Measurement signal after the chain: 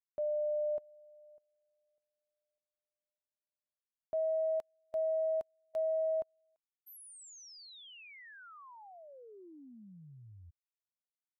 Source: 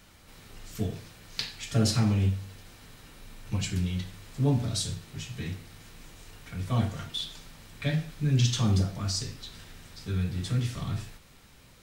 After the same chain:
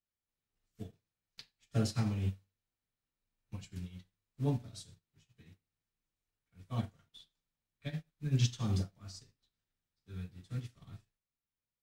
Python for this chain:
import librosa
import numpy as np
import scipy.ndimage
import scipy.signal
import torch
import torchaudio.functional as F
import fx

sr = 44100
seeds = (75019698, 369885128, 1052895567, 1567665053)

y = fx.upward_expand(x, sr, threshold_db=-46.0, expansion=2.5)
y = F.gain(torch.from_numpy(y), -4.0).numpy()